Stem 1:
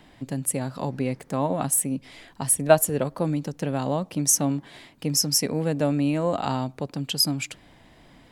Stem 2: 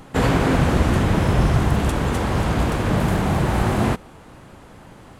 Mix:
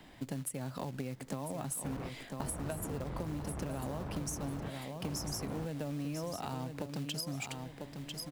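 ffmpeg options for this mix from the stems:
-filter_complex "[0:a]acrossover=split=130[a][b];[b]acompressor=threshold=-28dB:ratio=8[c];[a][c]amix=inputs=2:normalize=0,acrusher=bits=4:mode=log:mix=0:aa=0.000001,volume=-3dB,asplit=3[d][e][f];[e]volume=-9.5dB[g];[1:a]lowpass=1.2k,volume=22dB,asoftclip=hard,volume=-22dB,adelay=1700,volume=-12.5dB[h];[f]apad=whole_len=303916[i];[h][i]sidechaingate=range=-33dB:threshold=-44dB:ratio=16:detection=peak[j];[g]aecho=0:1:996|1992|2988|3984:1|0.31|0.0961|0.0298[k];[d][j][k]amix=inputs=3:normalize=0,acompressor=threshold=-35dB:ratio=6"

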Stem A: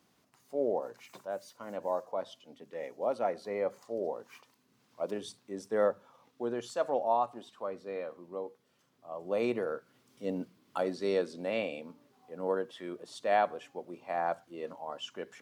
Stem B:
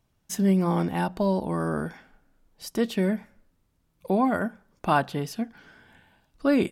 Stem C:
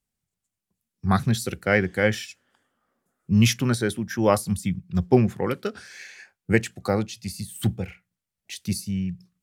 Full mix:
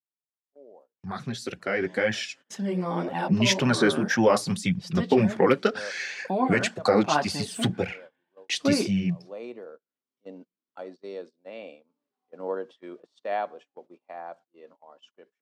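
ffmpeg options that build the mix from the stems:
-filter_complex "[0:a]adynamicequalizer=threshold=0.00355:dfrequency=1700:dqfactor=0.8:tfrequency=1700:tqfactor=0.8:attack=5:release=100:ratio=0.375:range=4:mode=cutabove:tftype=bell,volume=-11.5dB,afade=t=in:st=11.59:d=0.44:silence=0.375837[a];[1:a]adelay=2200,volume=-10dB[b];[2:a]alimiter=limit=-14dB:level=0:latency=1:release=26,volume=0dB,asplit=2[c][d];[d]apad=whole_len=679991[e];[a][e]sidechaincompress=threshold=-32dB:ratio=8:attack=8.2:release=319[f];[b][c]amix=inputs=2:normalize=0,flanger=delay=1.1:depth=6.5:regen=0:speed=1.9:shape=sinusoidal,acompressor=threshold=-32dB:ratio=1.5,volume=0dB[g];[f][g]amix=inputs=2:normalize=0,agate=range=-22dB:threshold=-55dB:ratio=16:detection=peak,dynaudnorm=f=260:g=17:m=13dB,highpass=220,lowpass=5.6k"

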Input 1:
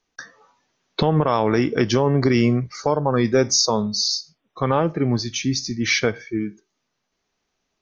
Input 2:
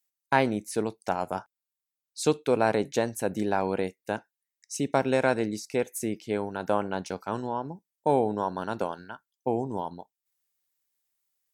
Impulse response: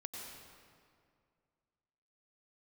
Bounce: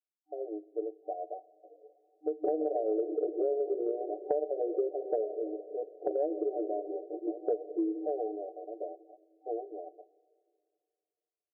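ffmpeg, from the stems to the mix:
-filter_complex "[0:a]adelay=1450,volume=-2.5dB,asplit=2[a][b];[b]volume=-8.5dB[c];[1:a]volume=-9.5dB,asplit=2[d][e];[e]volume=-18.5dB[f];[2:a]atrim=start_sample=2205[g];[c][f]amix=inputs=2:normalize=0[h];[h][g]afir=irnorm=-1:irlink=0[i];[a][d][i]amix=inputs=3:normalize=0,afftfilt=real='re*between(b*sr/4096,310,760)':imag='im*between(b*sr/4096,310,760)':win_size=4096:overlap=0.75,aecho=1:1:6.8:0.96,acompressor=threshold=-28dB:ratio=6"

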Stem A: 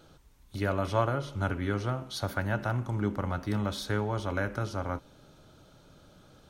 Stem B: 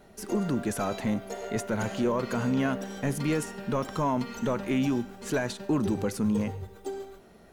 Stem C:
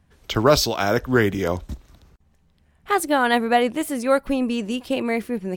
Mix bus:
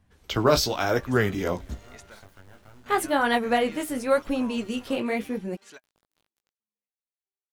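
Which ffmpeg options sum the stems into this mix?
-filter_complex "[0:a]acompressor=threshold=-38dB:ratio=2.5,acrusher=bits=5:dc=4:mix=0:aa=0.000001,flanger=delay=18.5:depth=3.1:speed=0.65,volume=-7.5dB[a];[1:a]bandpass=f=3.2k:t=q:w=0.62:csg=0,adelay=400,volume=-8dB[b];[2:a]flanger=delay=8.5:depth=9.6:regen=-35:speed=0.91:shape=triangular,volume=0dB,asplit=2[c][d];[d]apad=whole_len=349555[e];[b][e]sidechaingate=range=-52dB:threshold=-59dB:ratio=16:detection=peak[f];[a][f][c]amix=inputs=3:normalize=0"

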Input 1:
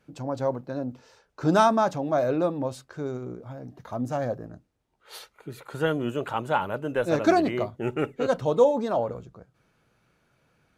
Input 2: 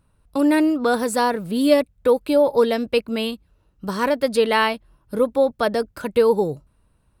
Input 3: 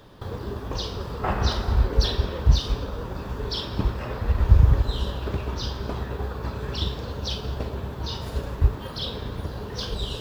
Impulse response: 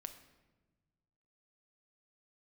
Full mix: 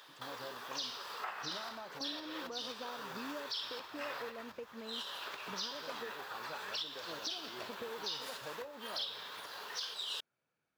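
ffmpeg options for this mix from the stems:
-filter_complex "[0:a]volume=-17.5dB[a];[1:a]lowpass=1.5k,adelay=1650,volume=-14.5dB,asplit=3[b][c][d];[b]atrim=end=6.11,asetpts=PTS-STARTPTS,afade=t=out:st=6.106:d=0.004:c=hsin[e];[c]atrim=start=6.11:end=7.57,asetpts=PTS-STARTPTS,volume=0[f];[d]atrim=start=7.57,asetpts=PTS-STARTPTS,afade=t=in:d=0.004:c=hsin[g];[e][f][g]concat=n=3:v=0:a=1[h];[2:a]acompressor=threshold=-27dB:ratio=10,highpass=1.3k,volume=1.5dB[i];[a][h]amix=inputs=2:normalize=0,highpass=f=290:p=1,acompressor=threshold=-44dB:ratio=6,volume=0dB[j];[i][j]amix=inputs=2:normalize=0,alimiter=level_in=5dB:limit=-24dB:level=0:latency=1:release=321,volume=-5dB"

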